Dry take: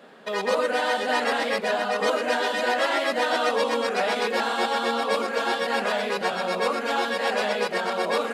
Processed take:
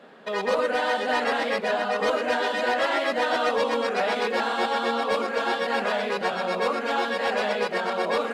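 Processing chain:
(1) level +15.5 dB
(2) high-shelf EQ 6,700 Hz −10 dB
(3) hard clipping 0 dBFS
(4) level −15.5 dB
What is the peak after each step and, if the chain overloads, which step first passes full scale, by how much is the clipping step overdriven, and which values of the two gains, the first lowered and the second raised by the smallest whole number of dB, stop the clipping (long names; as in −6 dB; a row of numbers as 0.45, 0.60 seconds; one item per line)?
+5.0, +4.5, 0.0, −15.5 dBFS
step 1, 4.5 dB
step 1 +10.5 dB, step 4 −10.5 dB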